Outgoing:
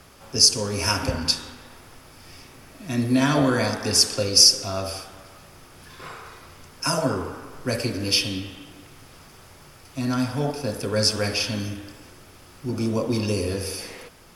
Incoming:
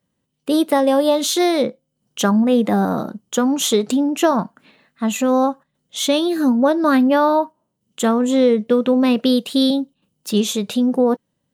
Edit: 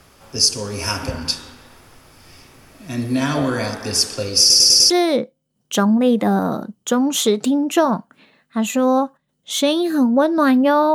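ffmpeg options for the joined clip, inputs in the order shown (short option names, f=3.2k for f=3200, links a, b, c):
-filter_complex "[0:a]apad=whole_dur=10.94,atrim=end=10.94,asplit=5[a][b][c][d][e];[a]atrim=end=4.502[f];[b]atrim=start=4.398:end=4.502[g];[c]atrim=start=4.398:end=4.502[h];[d]atrim=start=4.398:end=4.502[i];[e]atrim=start=4.398:end=4.502[j];[1:a]atrim=start=1.358:end=7.4[k];[f][g]acrossfade=d=0.004:c1=hsin:c2=hsin[l];[l][h]acrossfade=d=0.004:c1=hsin:c2=hsin[m];[m][i]acrossfade=d=0.004:c1=hsin:c2=hsin[n];[n][j]acrossfade=d=0.004:c1=hsin:c2=hsin[o];[o][k]acrossfade=d=0.004:c1=hsin:c2=hsin"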